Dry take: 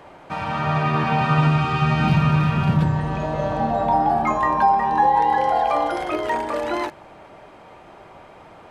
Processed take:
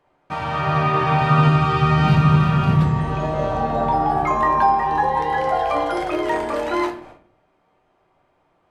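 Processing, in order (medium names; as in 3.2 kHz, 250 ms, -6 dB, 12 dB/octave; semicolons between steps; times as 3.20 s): gate with hold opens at -32 dBFS; simulated room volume 47 m³, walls mixed, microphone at 0.41 m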